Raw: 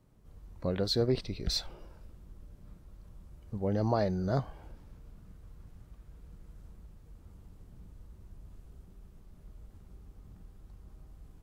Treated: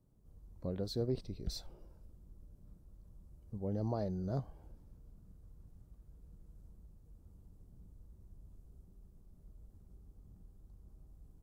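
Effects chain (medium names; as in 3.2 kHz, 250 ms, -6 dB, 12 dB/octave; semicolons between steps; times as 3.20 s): peaking EQ 2.2 kHz -13 dB 2.5 oct; trim -5.5 dB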